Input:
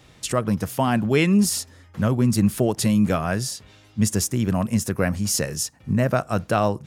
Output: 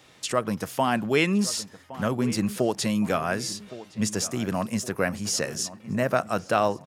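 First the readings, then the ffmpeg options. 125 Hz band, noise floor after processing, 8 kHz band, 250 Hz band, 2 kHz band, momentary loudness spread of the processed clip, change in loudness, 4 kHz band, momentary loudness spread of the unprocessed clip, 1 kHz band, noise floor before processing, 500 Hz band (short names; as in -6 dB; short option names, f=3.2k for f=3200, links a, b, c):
-9.5 dB, -54 dBFS, -4.0 dB, -5.5 dB, 0.0 dB, 8 LU, -4.0 dB, -0.5 dB, 7 LU, -0.5 dB, -52 dBFS, -2.0 dB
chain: -filter_complex "[0:a]acrossover=split=7600[a][b];[b]acompressor=threshold=-41dB:ratio=4:attack=1:release=60[c];[a][c]amix=inputs=2:normalize=0,highpass=f=370:p=1,asplit=2[d][e];[e]adelay=1115,lowpass=f=2.2k:p=1,volume=-16dB,asplit=2[f][g];[g]adelay=1115,lowpass=f=2.2k:p=1,volume=0.51,asplit=2[h][i];[i]adelay=1115,lowpass=f=2.2k:p=1,volume=0.51,asplit=2[j][k];[k]adelay=1115,lowpass=f=2.2k:p=1,volume=0.51,asplit=2[l][m];[m]adelay=1115,lowpass=f=2.2k:p=1,volume=0.51[n];[d][f][h][j][l][n]amix=inputs=6:normalize=0"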